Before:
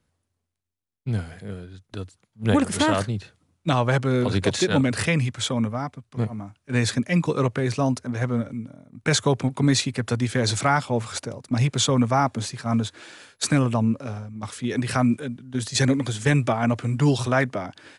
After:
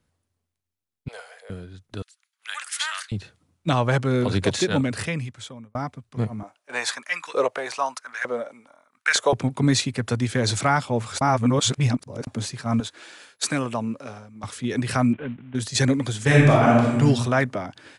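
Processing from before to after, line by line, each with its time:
1.08–1.50 s: elliptic high-pass 480 Hz
2.02–3.12 s: high-pass 1.4 kHz 24 dB/octave
4.54–5.75 s: fade out
6.43–9.33 s: LFO high-pass saw up 1.1 Hz 480–1700 Hz
11.21–12.27 s: reverse
12.80–14.44 s: high-pass 400 Hz 6 dB/octave
15.13–15.55 s: CVSD coder 16 kbps
16.25–16.99 s: reverb throw, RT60 0.97 s, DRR -5 dB

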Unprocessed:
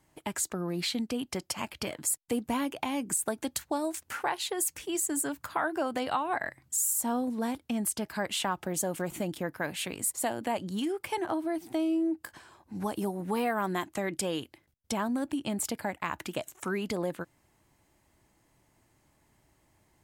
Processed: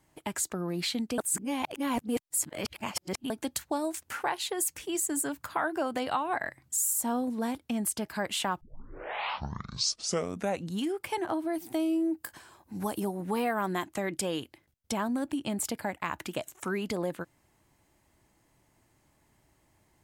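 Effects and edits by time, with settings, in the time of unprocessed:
1.18–3.30 s: reverse
8.61 s: tape start 2.21 s
11.53–13.00 s: treble shelf 9.7 kHz +11 dB

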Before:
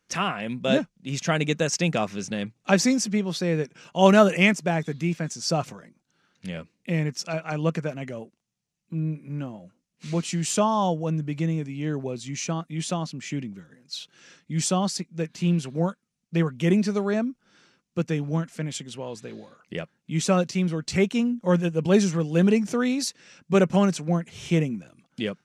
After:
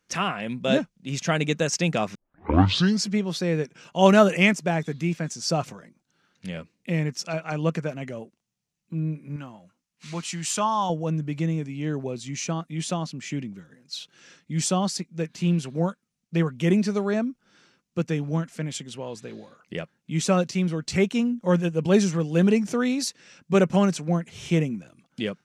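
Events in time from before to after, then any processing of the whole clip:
2.15 s: tape start 0.96 s
9.36–10.90 s: resonant low shelf 720 Hz -6.5 dB, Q 1.5

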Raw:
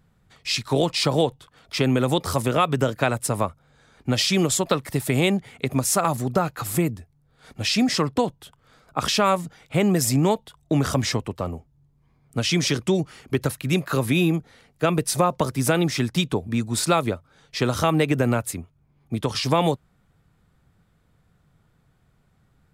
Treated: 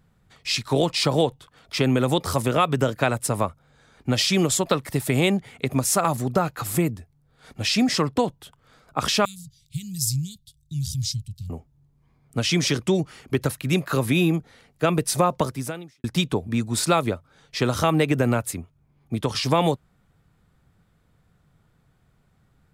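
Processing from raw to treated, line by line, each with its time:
9.25–11.50 s: Chebyshev band-stop 130–4200 Hz, order 3
15.41–16.04 s: fade out quadratic

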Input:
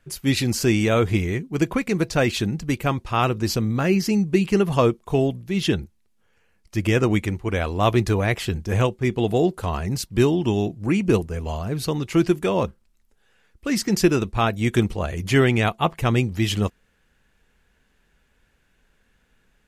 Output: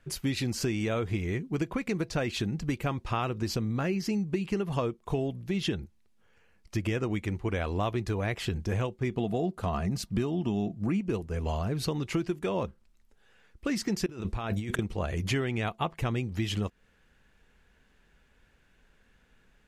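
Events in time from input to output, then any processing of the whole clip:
9.14–11.01 s: small resonant body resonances 200/680/1200 Hz, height 8 dB
14.06–14.79 s: compressor with a negative ratio -30 dBFS
whole clip: treble shelf 8.6 kHz -8.5 dB; compression 6:1, threshold -27 dBFS

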